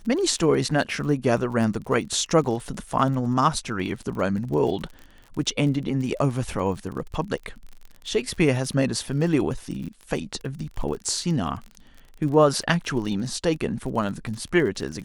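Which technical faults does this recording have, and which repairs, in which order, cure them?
crackle 36/s -33 dBFS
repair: de-click

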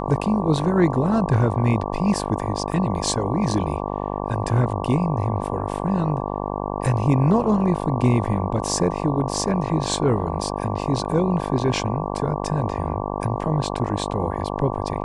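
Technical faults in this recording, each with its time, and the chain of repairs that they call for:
buzz 50 Hz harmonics 23 -27 dBFS
2.72 gap 2.4 ms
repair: de-hum 50 Hz, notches 23; interpolate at 2.72, 2.4 ms

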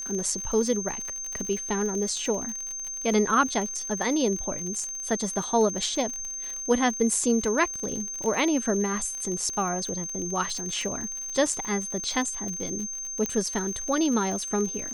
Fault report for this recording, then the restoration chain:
crackle 58/s -31 dBFS
tone 6300 Hz -32 dBFS
13.26 pop -14 dBFS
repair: de-click; notch 6300 Hz, Q 30

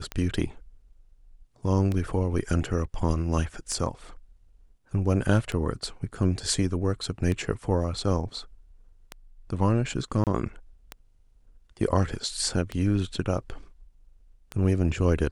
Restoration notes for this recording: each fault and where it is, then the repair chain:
tick 33 1/3 rpm -17 dBFS
10.24–10.27 gap 28 ms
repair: de-click; interpolate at 10.24, 28 ms

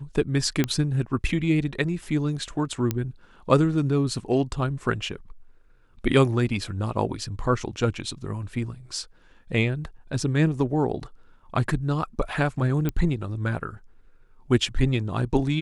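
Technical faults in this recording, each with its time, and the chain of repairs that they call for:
0.64 pop -9 dBFS
2.91 pop -11 dBFS
12.89 pop -14 dBFS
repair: de-click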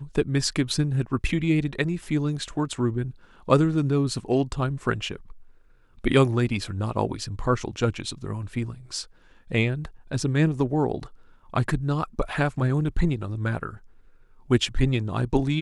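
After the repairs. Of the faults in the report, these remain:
2.91 pop

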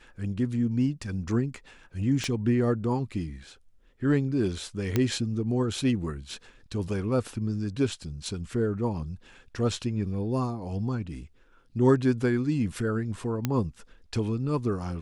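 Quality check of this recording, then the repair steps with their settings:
2.24 pop -18 dBFS
4.96 pop -11 dBFS
13.45 pop -12 dBFS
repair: de-click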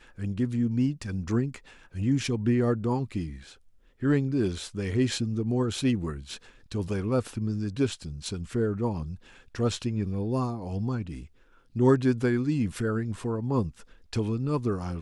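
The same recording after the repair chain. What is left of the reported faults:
2.24 pop

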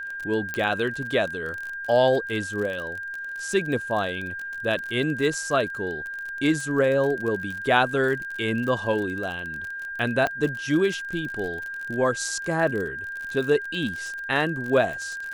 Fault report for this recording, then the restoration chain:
crackle 35/s -30 dBFS
tone 1600 Hz -31 dBFS
0.54 pop -14 dBFS
10.27 pop -13 dBFS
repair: de-click; notch 1600 Hz, Q 30

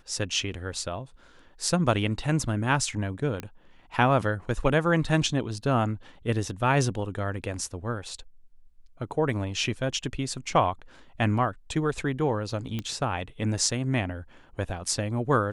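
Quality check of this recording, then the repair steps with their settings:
3.4 pop -19 dBFS
12.79 pop -18 dBFS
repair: de-click

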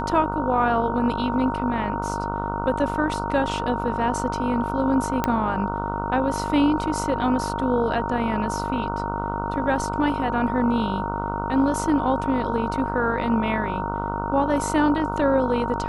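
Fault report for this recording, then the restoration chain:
buzz 50 Hz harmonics 30 -29 dBFS
tone 930 Hz -28 dBFS
5.24 pop -8 dBFS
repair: de-click; de-hum 50 Hz, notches 30; notch 930 Hz, Q 30

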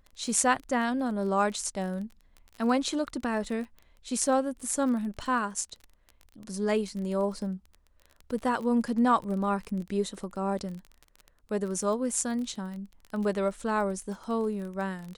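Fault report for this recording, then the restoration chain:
crackle 23/s -36 dBFS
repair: de-click

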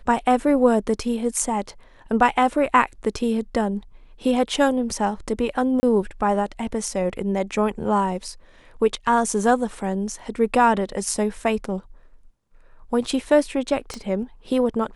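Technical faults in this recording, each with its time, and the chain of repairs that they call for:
5.8–5.83 gap 30 ms
13.94 pop -18 dBFS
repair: de-click; interpolate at 5.8, 30 ms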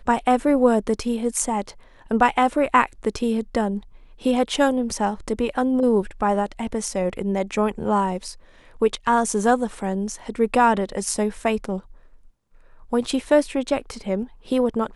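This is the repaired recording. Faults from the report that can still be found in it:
13.94 pop

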